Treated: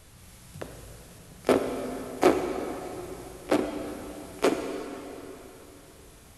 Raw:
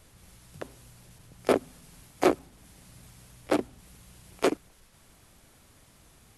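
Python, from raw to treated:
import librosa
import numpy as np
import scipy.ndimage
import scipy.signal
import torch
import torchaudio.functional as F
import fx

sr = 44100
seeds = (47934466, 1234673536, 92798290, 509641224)

y = fx.hpss(x, sr, part='harmonic', gain_db=6)
y = fx.rev_plate(y, sr, seeds[0], rt60_s=3.5, hf_ratio=0.8, predelay_ms=0, drr_db=4.5)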